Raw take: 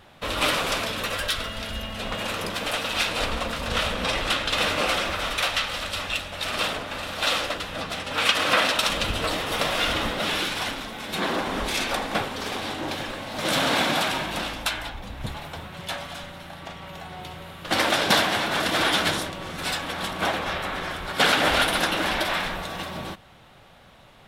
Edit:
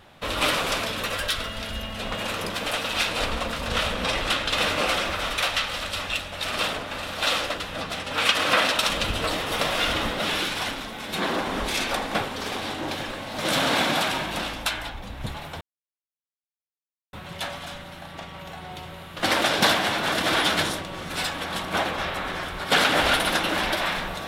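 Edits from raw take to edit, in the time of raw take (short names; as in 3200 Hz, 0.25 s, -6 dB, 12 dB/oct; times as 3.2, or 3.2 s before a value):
15.61 insert silence 1.52 s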